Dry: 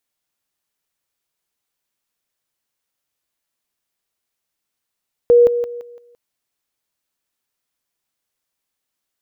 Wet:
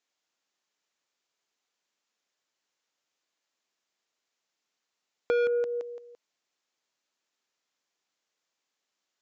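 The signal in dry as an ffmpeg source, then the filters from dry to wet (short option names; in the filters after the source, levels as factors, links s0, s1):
-f lavfi -i "aevalsrc='pow(10,(-6.5-10*floor(t/0.17))/20)*sin(2*PI*479*t)':d=0.85:s=44100"
-af "highpass=250,aresample=16000,asoftclip=type=tanh:threshold=0.126,aresample=44100,acompressor=threshold=0.0447:ratio=2.5"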